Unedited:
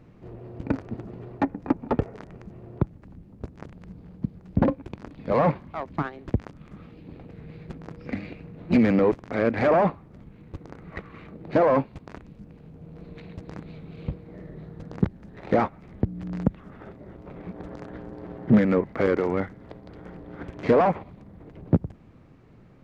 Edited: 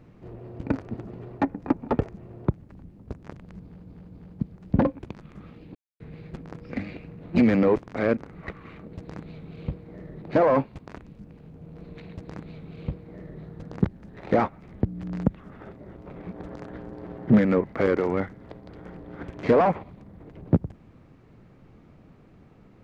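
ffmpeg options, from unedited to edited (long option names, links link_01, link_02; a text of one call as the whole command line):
ffmpeg -i in.wav -filter_complex "[0:a]asplit=10[link_01][link_02][link_03][link_04][link_05][link_06][link_07][link_08][link_09][link_10];[link_01]atrim=end=2.082[link_11];[link_02]atrim=start=2.408:end=4.202[link_12];[link_03]atrim=start=3.948:end=4.202[link_13];[link_04]atrim=start=3.948:end=5.032[link_14];[link_05]atrim=start=6.558:end=7.11,asetpts=PTS-STARTPTS,afade=type=out:start_time=0.548:duration=0.004:curve=hsin[link_15];[link_06]atrim=start=7.11:end=7.36,asetpts=PTS-STARTPTS,volume=0[link_16];[link_07]atrim=start=7.36:end=9.532,asetpts=PTS-STARTPTS,afade=type=in:duration=0.004:curve=hsin[link_17];[link_08]atrim=start=10.658:end=11.422[link_18];[link_09]atrim=start=13.328:end=14.622[link_19];[link_10]atrim=start=11.418[link_20];[link_11][link_12]acrossfade=duration=0.004:curve1=hsin:curve2=hsin[link_21];[link_21][link_13]acrossfade=duration=0.004:curve1=hsin:curve2=hsin[link_22];[link_22][link_14]acrossfade=duration=0.004:curve1=hsin:curve2=hsin[link_23];[link_15][link_16][link_17]concat=n=3:v=0:a=1[link_24];[link_23][link_24]acrossfade=duration=0.004:curve1=hsin:curve2=hsin[link_25];[link_25][link_18]acrossfade=duration=0.004:curve1=hsin:curve2=hsin[link_26];[link_26][link_19]acrossfade=duration=0.004:curve1=hsin:curve2=hsin[link_27];[link_27][link_20]acrossfade=duration=0.004:curve1=hsin:curve2=hsin" out.wav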